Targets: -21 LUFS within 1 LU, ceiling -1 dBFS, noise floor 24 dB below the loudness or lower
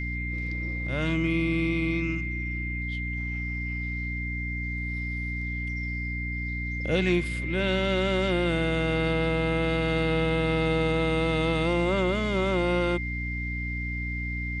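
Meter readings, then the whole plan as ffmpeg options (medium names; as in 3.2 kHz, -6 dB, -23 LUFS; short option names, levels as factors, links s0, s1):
hum 60 Hz; highest harmonic 300 Hz; hum level -30 dBFS; steady tone 2.1 kHz; tone level -33 dBFS; loudness -27.5 LUFS; peak level -13.0 dBFS; loudness target -21.0 LUFS
-> -af "bandreject=f=60:t=h:w=4,bandreject=f=120:t=h:w=4,bandreject=f=180:t=h:w=4,bandreject=f=240:t=h:w=4,bandreject=f=300:t=h:w=4"
-af "bandreject=f=2100:w=30"
-af "volume=2.11"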